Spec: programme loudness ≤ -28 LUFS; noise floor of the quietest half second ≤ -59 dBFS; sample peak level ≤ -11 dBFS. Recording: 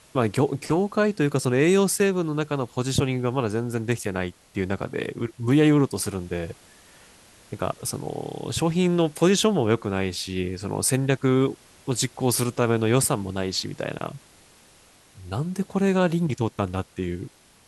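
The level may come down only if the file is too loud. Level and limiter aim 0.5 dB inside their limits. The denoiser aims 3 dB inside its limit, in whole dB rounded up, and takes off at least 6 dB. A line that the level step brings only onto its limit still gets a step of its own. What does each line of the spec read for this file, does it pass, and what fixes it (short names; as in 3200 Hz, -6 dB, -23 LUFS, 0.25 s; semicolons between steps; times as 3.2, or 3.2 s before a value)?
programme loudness -24.5 LUFS: fail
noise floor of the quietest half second -55 dBFS: fail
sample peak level -6.5 dBFS: fail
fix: denoiser 6 dB, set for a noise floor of -55 dBFS; gain -4 dB; limiter -11.5 dBFS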